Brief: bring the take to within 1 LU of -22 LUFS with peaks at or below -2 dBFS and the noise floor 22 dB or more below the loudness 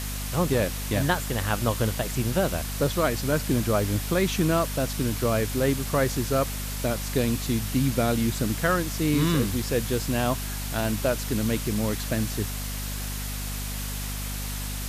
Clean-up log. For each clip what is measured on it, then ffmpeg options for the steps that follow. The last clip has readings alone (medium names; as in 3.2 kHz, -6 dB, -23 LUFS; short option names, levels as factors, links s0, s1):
hum 50 Hz; highest harmonic 250 Hz; hum level -30 dBFS; noise floor -32 dBFS; noise floor target -48 dBFS; loudness -26.0 LUFS; peak level -9.5 dBFS; loudness target -22.0 LUFS
-> -af "bandreject=f=50:t=h:w=4,bandreject=f=100:t=h:w=4,bandreject=f=150:t=h:w=4,bandreject=f=200:t=h:w=4,bandreject=f=250:t=h:w=4"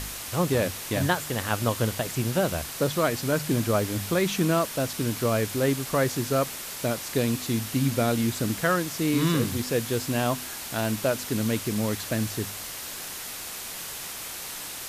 hum not found; noise floor -37 dBFS; noise floor target -49 dBFS
-> -af "afftdn=nr=12:nf=-37"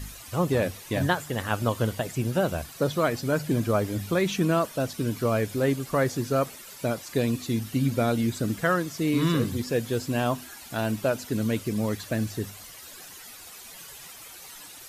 noise floor -45 dBFS; noise floor target -49 dBFS
-> -af "afftdn=nr=6:nf=-45"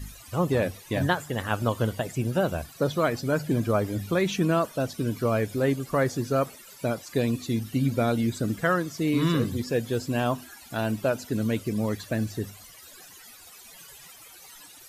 noise floor -49 dBFS; loudness -27.0 LUFS; peak level -9.5 dBFS; loudness target -22.0 LUFS
-> -af "volume=1.78"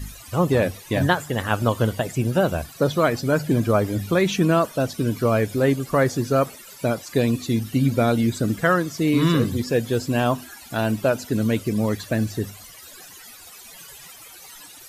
loudness -22.0 LUFS; peak level -4.5 dBFS; noise floor -44 dBFS